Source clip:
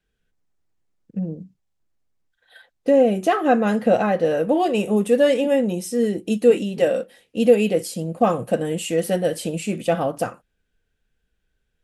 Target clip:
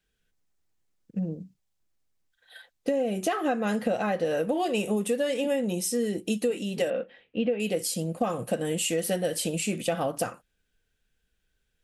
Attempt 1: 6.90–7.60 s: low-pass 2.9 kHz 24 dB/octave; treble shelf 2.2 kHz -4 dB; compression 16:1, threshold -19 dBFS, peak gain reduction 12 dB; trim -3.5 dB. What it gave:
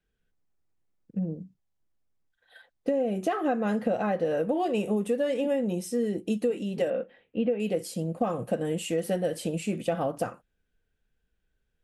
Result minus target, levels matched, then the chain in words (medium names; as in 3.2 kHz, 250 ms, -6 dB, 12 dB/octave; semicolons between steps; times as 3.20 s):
4 kHz band -6.5 dB
6.90–7.60 s: low-pass 2.9 kHz 24 dB/octave; treble shelf 2.2 kHz +7.5 dB; compression 16:1, threshold -19 dBFS, peak gain reduction 12 dB; trim -3.5 dB